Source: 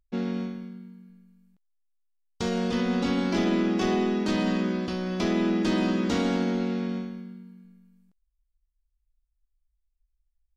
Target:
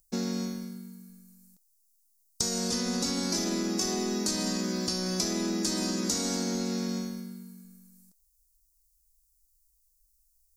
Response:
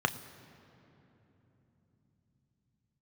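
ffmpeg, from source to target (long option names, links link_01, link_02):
-af "aexciter=amount=12.7:drive=6.6:freq=4700,acompressor=threshold=-27dB:ratio=5"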